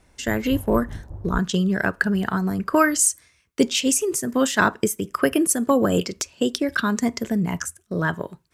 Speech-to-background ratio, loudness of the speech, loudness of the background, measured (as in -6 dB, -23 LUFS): 14.5 dB, -22.0 LUFS, -36.5 LUFS